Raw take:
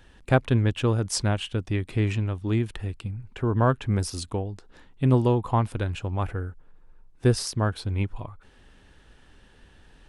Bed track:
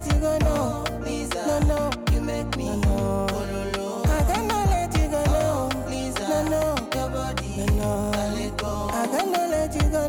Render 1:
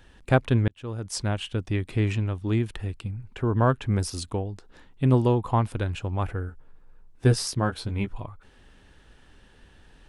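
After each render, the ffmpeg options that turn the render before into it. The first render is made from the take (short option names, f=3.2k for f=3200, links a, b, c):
-filter_complex "[0:a]asettb=1/sr,asplit=3[a][b][c];[a]atrim=end=6.474[d];[b]atrim=start=6.47:end=8.13,asetpts=PTS-STARTPTS,afade=t=in:d=0.004:c=qsin,afade=t=out:st=1.656:d=0.004:c=qsin,asplit=2[e][f];[f]adelay=15,volume=-6dB[g];[e][g]amix=inputs=2:normalize=0,atrim=end_sample=73206[h];[c]atrim=start=8.126[i];[d][h]acrossfade=d=0.004:c1=hsin:c2=qsin[j];[j][i]acrossfade=d=0.004:c1=qsin:c2=hsin,asplit=2[k][l];[k]atrim=end=0.68,asetpts=PTS-STARTPTS,afade=t=out:st=0.676:d=0.004:c=hsin[m];[l]atrim=start=0.68,asetpts=PTS-STARTPTS,afade=t=in:d=1.15:c=qsin[n];[m][n]concat=n=2:v=0:a=1"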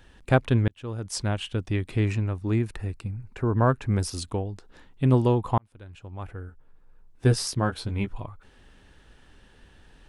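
-filter_complex "[0:a]asettb=1/sr,asplit=3[a][b][c];[a]atrim=end=2.054[d];[b]atrim=start=2.05:end=3.91,asetpts=PTS-STARTPTS,afade=t=in:d=0.004:c=qsin,afade=t=out:st=1.856:d=0.004:c=qsin,equalizer=f=3.2k:t=o:w=0.31:g=-10[e];[c]atrim=start=3.906[f];[d][e]acrossfade=d=0.004:c1=hsin:c2=qsin[g];[g][f]acrossfade=d=0.004:c1=qsin:c2=hsin,asplit=2[h][i];[h]atrim=end=5.58,asetpts=PTS-STARTPTS,afade=t=out:st=5.576:d=0.004:c=hsin[j];[i]atrim=start=5.58,asetpts=PTS-STARTPTS,afade=t=in:d=1.85[k];[j][k]concat=n=2:v=0:a=1"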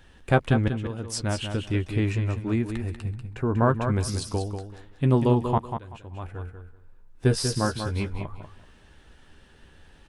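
-filter_complex "[0:a]asplit=2[a][b];[b]adelay=13,volume=-10dB[c];[a][c]amix=inputs=2:normalize=0,asplit=2[d][e];[e]aecho=0:1:191|382|573:0.422|0.0886|0.0186[f];[d][f]amix=inputs=2:normalize=0"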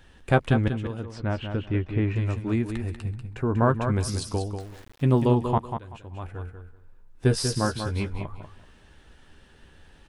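-filter_complex "[0:a]asettb=1/sr,asplit=3[a][b][c];[a]atrim=end=1.054[d];[b]atrim=start=1.05:end=2.16,asetpts=PTS-STARTPTS,afade=t=in:d=0.004:c=qsin,afade=t=out:st=1.106:d=0.004:c=qsin,lowpass=2.2k[e];[c]atrim=start=2.156[f];[d][e]acrossfade=d=0.004:c1=hsin:c2=qsin[g];[g][f]acrossfade=d=0.004:c1=qsin:c2=hsin,asettb=1/sr,asplit=3[h][i][j];[h]atrim=end=4.604[k];[i]atrim=start=4.6:end=5.25,asetpts=PTS-STARTPTS,afade=t=in:d=0.004:c=qsin,afade=t=out:st=0.646:d=0.004:c=qsin,aeval=exprs='val(0)*gte(abs(val(0)),0.00531)':c=same[l];[j]atrim=start=5.246[m];[k][l]acrossfade=d=0.004:c1=hsin:c2=qsin[n];[n][m]acrossfade=d=0.004:c1=qsin:c2=hsin"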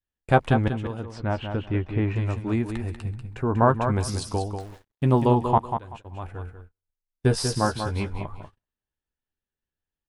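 -af "adynamicequalizer=threshold=0.00891:dfrequency=830:dqfactor=1.6:tfrequency=830:tqfactor=1.6:attack=5:release=100:ratio=0.375:range=3.5:mode=boostabove:tftype=bell,agate=range=-39dB:threshold=-41dB:ratio=16:detection=peak"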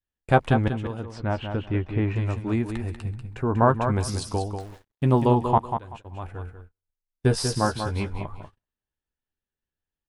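-af anull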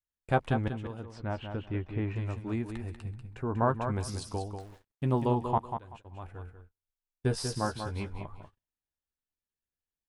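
-af "volume=-8dB"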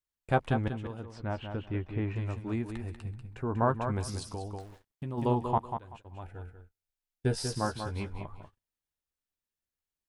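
-filter_complex "[0:a]asplit=3[a][b][c];[a]afade=t=out:st=4.31:d=0.02[d];[b]acompressor=threshold=-33dB:ratio=6:attack=3.2:release=140:knee=1:detection=peak,afade=t=in:st=4.31:d=0.02,afade=t=out:st=5.17:d=0.02[e];[c]afade=t=in:st=5.17:d=0.02[f];[d][e][f]amix=inputs=3:normalize=0,asettb=1/sr,asplit=3[g][h][i];[g]atrim=end=6.214[j];[h]atrim=start=6.21:end=7.47,asetpts=PTS-STARTPTS,afade=t=in:d=0.004:c=qsin,afade=t=out:st=1.256:d=0.004:c=qsin,asuperstop=centerf=1100:order=4:qfactor=4.3[k];[i]atrim=start=7.466[l];[j][k]acrossfade=d=0.004:c1=hsin:c2=qsin[m];[m][l]acrossfade=d=0.004:c1=qsin:c2=hsin"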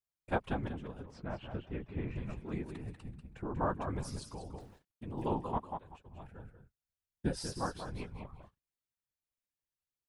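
-af "afftfilt=real='hypot(re,im)*cos(2*PI*random(0))':imag='hypot(re,im)*sin(2*PI*random(1))':win_size=512:overlap=0.75"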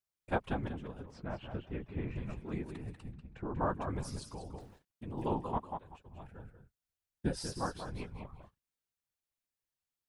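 -filter_complex "[0:a]asettb=1/sr,asplit=3[a][b][c];[a]atrim=end=3.124[d];[b]atrim=start=3.12:end=3.61,asetpts=PTS-STARTPTS,afade=t=in:d=0.004:c=qsin,afade=t=out:st=0.486:d=0.004:c=qsin,lowpass=5.3k[e];[c]atrim=start=3.606[f];[d][e]acrossfade=d=0.004:c1=hsin:c2=qsin[g];[g][f]acrossfade=d=0.004:c1=qsin:c2=hsin"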